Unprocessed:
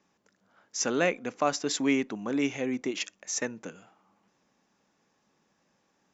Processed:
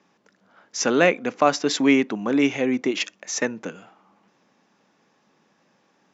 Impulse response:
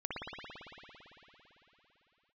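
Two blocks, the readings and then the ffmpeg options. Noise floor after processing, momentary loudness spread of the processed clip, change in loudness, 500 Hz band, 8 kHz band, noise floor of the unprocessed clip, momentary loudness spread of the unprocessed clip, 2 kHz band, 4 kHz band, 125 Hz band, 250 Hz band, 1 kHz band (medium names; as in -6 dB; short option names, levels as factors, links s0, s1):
-65 dBFS, 10 LU, +8.0 dB, +8.5 dB, no reading, -73 dBFS, 10 LU, +8.5 dB, +7.0 dB, +6.5 dB, +8.5 dB, +8.5 dB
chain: -af "highpass=130,lowpass=5200,volume=2.66"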